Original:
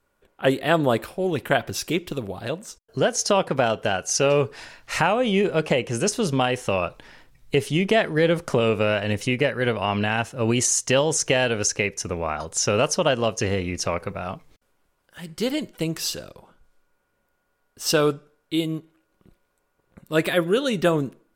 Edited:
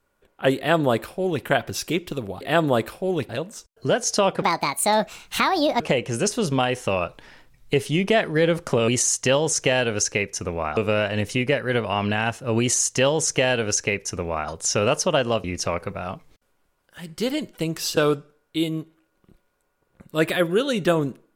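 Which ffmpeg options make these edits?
-filter_complex "[0:a]asplit=9[s0][s1][s2][s3][s4][s5][s6][s7][s8];[s0]atrim=end=2.412[s9];[s1]atrim=start=0.568:end=1.452[s10];[s2]atrim=start=2.408:end=3.544[s11];[s3]atrim=start=3.54:end=5.61,asetpts=PTS-STARTPTS,asetrate=66150,aresample=44100[s12];[s4]atrim=start=5.606:end=8.692[s13];[s5]atrim=start=10.518:end=12.412[s14];[s6]atrim=start=8.688:end=13.362[s15];[s7]atrim=start=13.638:end=16.172[s16];[s8]atrim=start=17.938[s17];[s9][s10]acrossfade=d=0.004:c1=hsin:c2=hsin[s18];[s18][s11]acrossfade=d=0.004:c1=hsin:c2=hsin[s19];[s19][s12]acrossfade=d=0.004:c1=hsin:c2=hsin[s20];[s20][s13]acrossfade=d=0.004:c1=hsin:c2=hsin[s21];[s21][s14]acrossfade=d=0.004:c1=hsin:c2=hsin[s22];[s22][s15]acrossfade=d=0.004:c1=hsin:c2=hsin[s23];[s23][s16]acrossfade=d=0.004:c1=hsin:c2=hsin[s24];[s24][s17]acrossfade=d=0.004:c1=hsin:c2=hsin"

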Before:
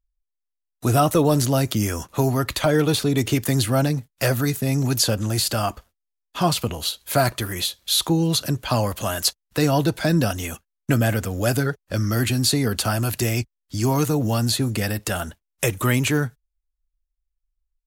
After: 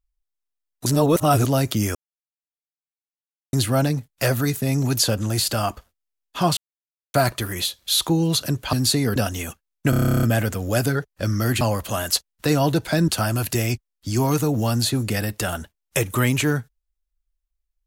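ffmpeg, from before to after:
-filter_complex "[0:a]asplit=22[s0][s1][s2][s3][s4][s5][s6][s7][s8][s9][s10][s11][s12][s13][s14][s15][s16][s17][s18][s19][s20][s21];[s0]atrim=end=0.862[s22];[s1]atrim=start=0.858:end=1.452,asetpts=PTS-STARTPTS,areverse[s23];[s2]atrim=start=1.448:end=1.95,asetpts=PTS-STARTPTS,afade=t=out:st=0.498:d=0.004:c=hsin[s24];[s3]atrim=start=1.95:end=3.53,asetpts=PTS-STARTPTS,volume=0[s25];[s4]atrim=start=3.53:end=6.57,asetpts=PTS-STARTPTS,afade=t=in:d=0.004:c=hsin,afade=t=out:st=3.036:d=0.004:c=hsin[s26];[s5]atrim=start=6.57:end=7.14,asetpts=PTS-STARTPTS,volume=0[s27];[s6]atrim=start=7.14:end=8.732,asetpts=PTS-STARTPTS,afade=t=in:d=0.004:c=hsin[s28];[s7]atrim=start=12.318:end=12.752[s29];[s8]atrim=start=10.198:end=10.972[s30];[s9]atrim=start=10.938:end=10.972[s31];[s10]atrim=start=10.938:end=10.972[s32];[s11]atrim=start=10.938:end=10.972[s33];[s12]atrim=start=10.938:end=10.972[s34];[s13]atrim=start=10.938:end=10.972[s35];[s14]atrim=start=10.938:end=10.972[s36];[s15]atrim=start=10.938:end=10.972[s37];[s16]atrim=start=10.938:end=10.972[s38];[s17]atrim=start=10.938:end=10.972[s39];[s18]atrim=start=10.938:end=10.972[s40];[s19]atrim=start=10.938:end=12.322[s41];[s20]atrim=start=8.728:end=10.202[s42];[s21]atrim=start=12.748[s43];[s22][s23]acrossfade=d=0.004:c1=hsin:c2=hsin[s44];[s24][s25][s26][s27][s28]concat=n=5:v=0:a=1[s45];[s44][s45]acrossfade=d=0.004:c1=hsin:c2=hsin[s46];[s46][s29]acrossfade=d=0.004:c1=hsin:c2=hsin[s47];[s47][s30]acrossfade=d=0.004:c1=hsin:c2=hsin[s48];[s48][s31]acrossfade=d=0.004:c1=hsin:c2=hsin[s49];[s49][s32]acrossfade=d=0.004:c1=hsin:c2=hsin[s50];[s50][s33]acrossfade=d=0.004:c1=hsin:c2=hsin[s51];[s51][s34]acrossfade=d=0.004:c1=hsin:c2=hsin[s52];[s52][s35]acrossfade=d=0.004:c1=hsin:c2=hsin[s53];[s53][s36]acrossfade=d=0.004:c1=hsin:c2=hsin[s54];[s54][s37]acrossfade=d=0.004:c1=hsin:c2=hsin[s55];[s55][s38]acrossfade=d=0.004:c1=hsin:c2=hsin[s56];[s56][s39]acrossfade=d=0.004:c1=hsin:c2=hsin[s57];[s57][s40]acrossfade=d=0.004:c1=hsin:c2=hsin[s58];[s58][s41]acrossfade=d=0.004:c1=hsin:c2=hsin[s59];[s59][s42]acrossfade=d=0.004:c1=hsin:c2=hsin[s60];[s60][s43]acrossfade=d=0.004:c1=hsin:c2=hsin"

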